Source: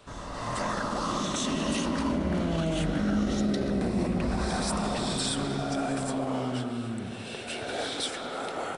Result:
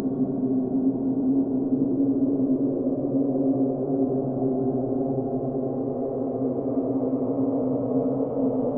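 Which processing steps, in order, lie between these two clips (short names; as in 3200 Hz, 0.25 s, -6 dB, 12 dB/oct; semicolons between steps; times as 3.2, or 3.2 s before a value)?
low-pass sweep 100 Hz -> 5600 Hz, 5.28–7.99; Paulstretch 41×, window 0.10 s, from 6.12; upward compressor, threshold -37 dBFS; gain +2.5 dB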